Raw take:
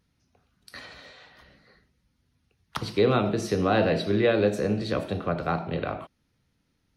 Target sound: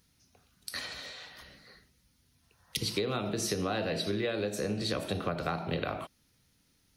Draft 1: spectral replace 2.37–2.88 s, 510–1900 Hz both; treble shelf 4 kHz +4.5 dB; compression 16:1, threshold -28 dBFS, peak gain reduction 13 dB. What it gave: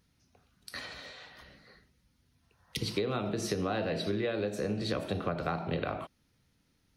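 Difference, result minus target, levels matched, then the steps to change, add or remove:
8 kHz band -5.5 dB
change: treble shelf 4 kHz +14.5 dB

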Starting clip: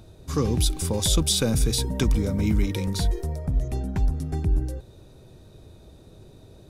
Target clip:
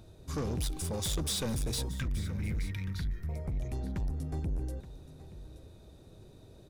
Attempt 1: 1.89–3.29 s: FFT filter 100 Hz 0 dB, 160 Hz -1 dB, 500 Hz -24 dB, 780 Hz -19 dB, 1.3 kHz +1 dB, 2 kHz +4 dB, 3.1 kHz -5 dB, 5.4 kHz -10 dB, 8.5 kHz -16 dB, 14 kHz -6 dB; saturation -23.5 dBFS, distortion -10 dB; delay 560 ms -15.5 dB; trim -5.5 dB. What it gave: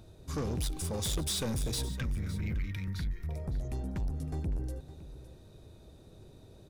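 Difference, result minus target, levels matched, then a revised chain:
echo 315 ms early
1.89–3.29 s: FFT filter 100 Hz 0 dB, 160 Hz -1 dB, 500 Hz -24 dB, 780 Hz -19 dB, 1.3 kHz +1 dB, 2 kHz +4 dB, 3.1 kHz -5 dB, 5.4 kHz -10 dB, 8.5 kHz -16 dB, 14 kHz -6 dB; saturation -23.5 dBFS, distortion -10 dB; delay 875 ms -15.5 dB; trim -5.5 dB

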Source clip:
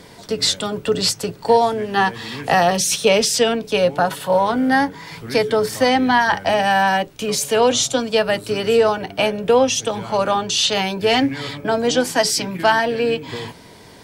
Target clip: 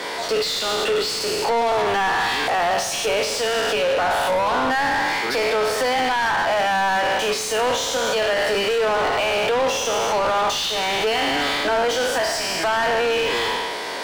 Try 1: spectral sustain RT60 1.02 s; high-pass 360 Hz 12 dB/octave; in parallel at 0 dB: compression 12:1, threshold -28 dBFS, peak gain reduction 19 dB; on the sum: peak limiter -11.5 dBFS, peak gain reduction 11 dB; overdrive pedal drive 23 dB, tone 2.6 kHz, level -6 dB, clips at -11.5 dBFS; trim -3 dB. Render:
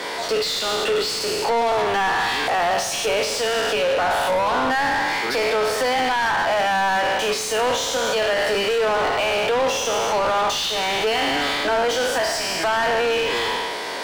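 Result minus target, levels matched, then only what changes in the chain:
compression: peak gain reduction +8.5 dB
change: compression 12:1, threshold -18.5 dBFS, peak gain reduction 10.5 dB

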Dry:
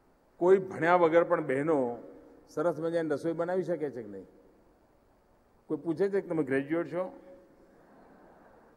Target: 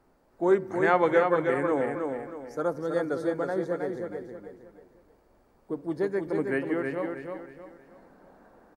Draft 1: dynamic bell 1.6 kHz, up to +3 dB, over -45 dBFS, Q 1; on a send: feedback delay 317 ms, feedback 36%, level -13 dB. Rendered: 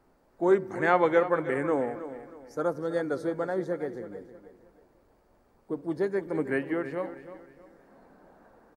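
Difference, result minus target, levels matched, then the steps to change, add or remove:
echo-to-direct -8 dB
change: feedback delay 317 ms, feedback 36%, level -5 dB

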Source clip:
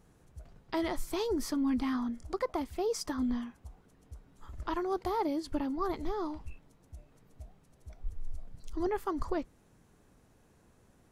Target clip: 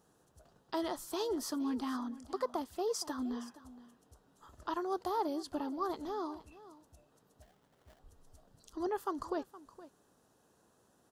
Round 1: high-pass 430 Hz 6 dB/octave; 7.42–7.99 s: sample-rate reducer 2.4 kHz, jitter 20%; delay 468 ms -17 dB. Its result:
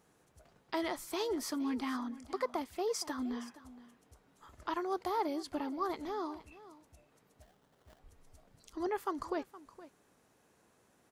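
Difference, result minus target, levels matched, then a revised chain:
2 kHz band +4.5 dB
high-pass 430 Hz 6 dB/octave; peaking EQ 2.2 kHz -14.5 dB 0.4 oct; 7.42–7.99 s: sample-rate reducer 2.4 kHz, jitter 20%; delay 468 ms -17 dB

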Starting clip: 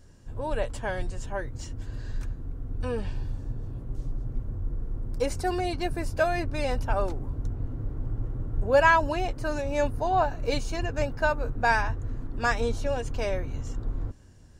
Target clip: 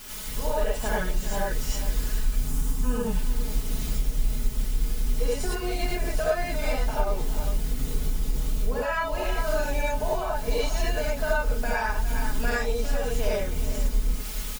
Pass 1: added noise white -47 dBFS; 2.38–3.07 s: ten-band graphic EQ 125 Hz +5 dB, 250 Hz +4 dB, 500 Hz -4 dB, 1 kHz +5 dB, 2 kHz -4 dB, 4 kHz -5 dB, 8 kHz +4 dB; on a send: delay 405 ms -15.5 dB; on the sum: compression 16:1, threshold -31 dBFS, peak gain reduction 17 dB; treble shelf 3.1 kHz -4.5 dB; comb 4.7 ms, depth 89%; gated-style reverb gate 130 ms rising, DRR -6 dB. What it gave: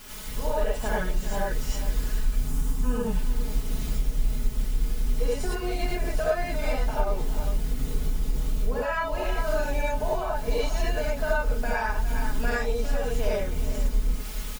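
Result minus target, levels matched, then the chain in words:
8 kHz band -3.5 dB
added noise white -47 dBFS; 2.38–3.07 s: ten-band graphic EQ 125 Hz +5 dB, 250 Hz +4 dB, 500 Hz -4 dB, 1 kHz +5 dB, 2 kHz -4 dB, 4 kHz -5 dB, 8 kHz +4 dB; on a send: delay 405 ms -15.5 dB; on the sum: compression 16:1, threshold -31 dBFS, peak gain reduction 17 dB; comb 4.7 ms, depth 89%; gated-style reverb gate 130 ms rising, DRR -6 dB

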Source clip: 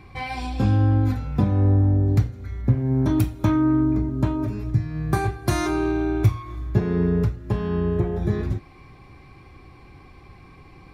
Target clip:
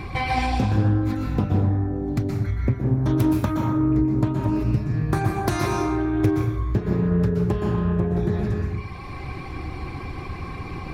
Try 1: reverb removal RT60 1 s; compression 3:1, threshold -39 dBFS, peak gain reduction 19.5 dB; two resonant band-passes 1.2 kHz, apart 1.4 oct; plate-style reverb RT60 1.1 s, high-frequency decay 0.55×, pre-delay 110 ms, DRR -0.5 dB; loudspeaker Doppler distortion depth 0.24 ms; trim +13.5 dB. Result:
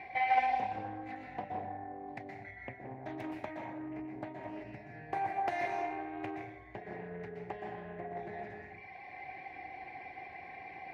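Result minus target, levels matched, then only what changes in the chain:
1 kHz band +12.0 dB
remove: two resonant band-passes 1.2 kHz, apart 1.4 oct

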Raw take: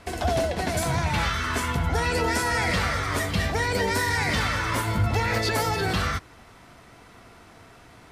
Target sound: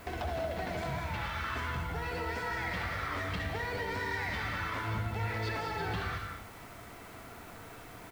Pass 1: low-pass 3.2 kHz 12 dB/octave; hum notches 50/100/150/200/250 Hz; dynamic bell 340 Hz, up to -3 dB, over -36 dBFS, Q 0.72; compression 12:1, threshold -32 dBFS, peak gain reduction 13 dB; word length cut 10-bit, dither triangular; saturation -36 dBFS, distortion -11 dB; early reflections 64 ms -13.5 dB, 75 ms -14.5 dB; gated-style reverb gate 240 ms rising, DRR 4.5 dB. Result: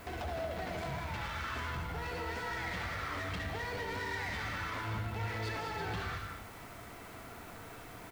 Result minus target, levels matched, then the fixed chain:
saturation: distortion +8 dB
low-pass 3.2 kHz 12 dB/octave; hum notches 50/100/150/200/250 Hz; dynamic bell 340 Hz, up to -3 dB, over -36 dBFS, Q 0.72; compression 12:1, threshold -32 dBFS, peak gain reduction 13 dB; word length cut 10-bit, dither triangular; saturation -29 dBFS, distortion -19 dB; early reflections 64 ms -13.5 dB, 75 ms -14.5 dB; gated-style reverb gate 240 ms rising, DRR 4.5 dB

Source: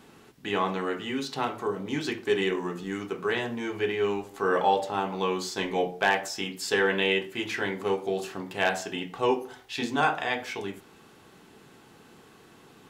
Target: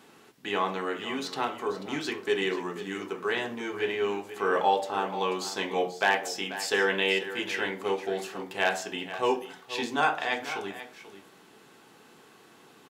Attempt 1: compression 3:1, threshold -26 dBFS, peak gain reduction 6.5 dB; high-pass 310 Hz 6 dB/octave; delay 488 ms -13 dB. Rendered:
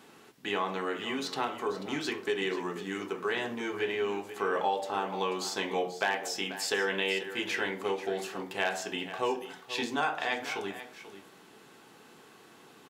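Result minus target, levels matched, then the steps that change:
compression: peak gain reduction +6.5 dB
remove: compression 3:1, threshold -26 dBFS, peak gain reduction 6.5 dB

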